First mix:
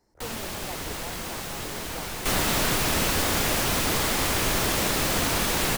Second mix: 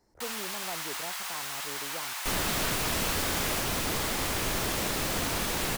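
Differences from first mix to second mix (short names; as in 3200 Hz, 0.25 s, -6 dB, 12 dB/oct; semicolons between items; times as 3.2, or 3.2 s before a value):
first sound: add inverse Chebyshev high-pass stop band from 190 Hz, stop band 70 dB; second sound -5.5 dB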